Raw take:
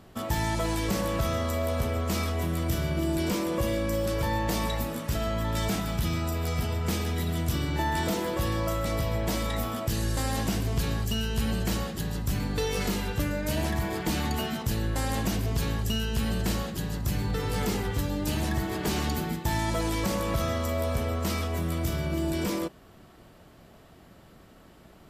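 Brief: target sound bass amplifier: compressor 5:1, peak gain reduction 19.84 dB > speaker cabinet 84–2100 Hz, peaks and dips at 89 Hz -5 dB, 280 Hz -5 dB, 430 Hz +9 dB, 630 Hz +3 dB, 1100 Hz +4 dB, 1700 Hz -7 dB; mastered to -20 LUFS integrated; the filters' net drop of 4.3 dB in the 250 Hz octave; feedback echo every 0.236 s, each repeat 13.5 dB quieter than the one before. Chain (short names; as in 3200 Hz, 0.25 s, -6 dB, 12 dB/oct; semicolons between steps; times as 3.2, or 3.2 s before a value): bell 250 Hz -5.5 dB; feedback echo 0.236 s, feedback 21%, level -13.5 dB; compressor 5:1, threshold -45 dBFS; speaker cabinet 84–2100 Hz, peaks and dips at 89 Hz -5 dB, 280 Hz -5 dB, 430 Hz +9 dB, 630 Hz +3 dB, 1100 Hz +4 dB, 1700 Hz -7 dB; gain +27 dB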